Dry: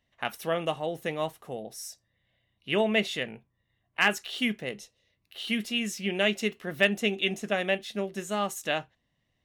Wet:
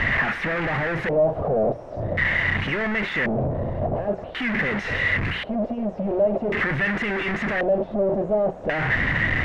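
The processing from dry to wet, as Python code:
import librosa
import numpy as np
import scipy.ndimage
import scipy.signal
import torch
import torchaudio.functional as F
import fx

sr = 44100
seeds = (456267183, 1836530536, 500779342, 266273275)

y = np.sign(x) * np.sqrt(np.mean(np.square(x)))
y = fx.low_shelf(y, sr, hz=190.0, db=6.5)
y = fx.hum_notches(y, sr, base_hz=60, count=3)
y = fx.filter_lfo_lowpass(y, sr, shape='square', hz=0.46, low_hz=620.0, high_hz=1900.0, q=4.8)
y = y * librosa.db_to_amplitude(3.5)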